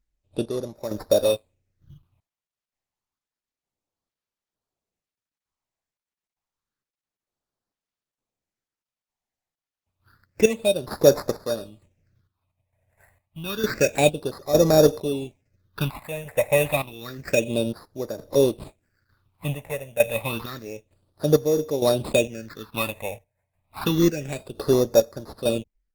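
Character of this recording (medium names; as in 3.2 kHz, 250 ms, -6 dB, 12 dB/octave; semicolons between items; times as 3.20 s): aliases and images of a low sample rate 3.1 kHz, jitter 0%; chopped level 1.1 Hz, depth 65%, duty 50%; phasing stages 6, 0.29 Hz, lowest notch 320–2700 Hz; Opus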